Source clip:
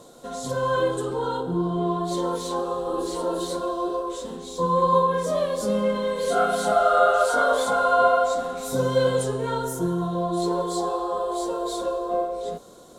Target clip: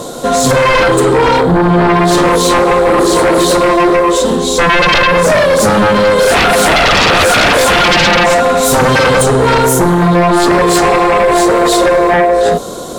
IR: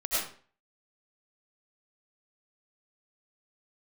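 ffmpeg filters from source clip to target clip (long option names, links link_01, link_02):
-filter_complex "[0:a]asplit=2[link_01][link_02];[link_02]acompressor=threshold=-28dB:ratio=6,volume=3dB[link_03];[link_01][link_03]amix=inputs=2:normalize=0,aeval=exprs='0.668*sin(PI/2*5.62*val(0)/0.668)':channel_layout=same,volume=-2dB"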